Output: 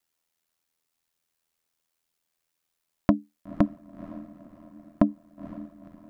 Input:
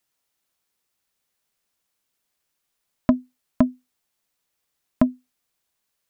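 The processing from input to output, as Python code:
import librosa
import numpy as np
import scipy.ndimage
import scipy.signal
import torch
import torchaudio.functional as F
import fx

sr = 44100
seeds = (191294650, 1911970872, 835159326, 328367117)

y = fx.echo_diffused(x, sr, ms=494, feedback_pct=46, wet_db=-14.0)
y = y * np.sin(2.0 * np.pi * 41.0 * np.arange(len(y)) / sr)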